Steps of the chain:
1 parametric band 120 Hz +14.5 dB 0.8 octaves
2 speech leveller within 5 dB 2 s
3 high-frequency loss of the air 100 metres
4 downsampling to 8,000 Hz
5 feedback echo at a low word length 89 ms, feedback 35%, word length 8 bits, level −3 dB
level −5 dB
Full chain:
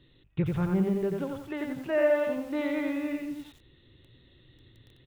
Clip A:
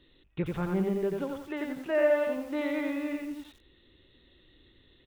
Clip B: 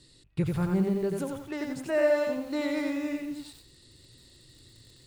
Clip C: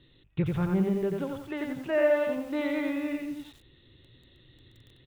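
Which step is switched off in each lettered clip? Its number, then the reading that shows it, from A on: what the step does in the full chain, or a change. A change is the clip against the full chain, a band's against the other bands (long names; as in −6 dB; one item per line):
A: 1, 125 Hz band −5.0 dB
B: 4, 4 kHz band +4.5 dB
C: 3, 4 kHz band +1.5 dB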